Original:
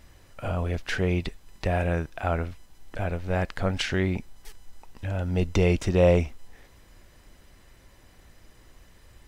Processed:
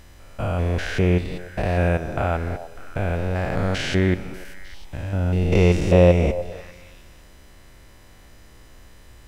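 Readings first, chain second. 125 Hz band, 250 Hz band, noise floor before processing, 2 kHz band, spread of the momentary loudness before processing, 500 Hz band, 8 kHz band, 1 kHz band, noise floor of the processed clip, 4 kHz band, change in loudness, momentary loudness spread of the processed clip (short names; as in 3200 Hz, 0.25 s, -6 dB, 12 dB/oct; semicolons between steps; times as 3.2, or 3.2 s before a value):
+6.0 dB, +5.5 dB, -55 dBFS, +4.0 dB, 14 LU, +5.0 dB, +2.5 dB, +4.5 dB, -47 dBFS, +3.0 dB, +5.5 dB, 18 LU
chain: stepped spectrum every 0.2 s; delay with a stepping band-pass 0.3 s, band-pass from 630 Hz, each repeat 1.4 oct, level -11 dB; Schroeder reverb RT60 1.6 s, combs from 30 ms, DRR 17 dB; gain +7 dB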